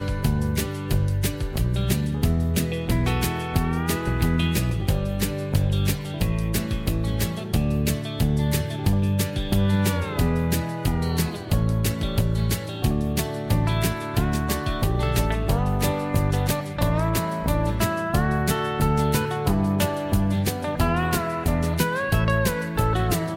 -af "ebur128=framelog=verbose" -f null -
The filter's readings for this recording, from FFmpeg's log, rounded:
Integrated loudness:
  I:         -23.9 LUFS
  Threshold: -33.9 LUFS
Loudness range:
  LRA:         1.3 LU
  Threshold: -43.9 LUFS
  LRA low:   -24.5 LUFS
  LRA high:  -23.2 LUFS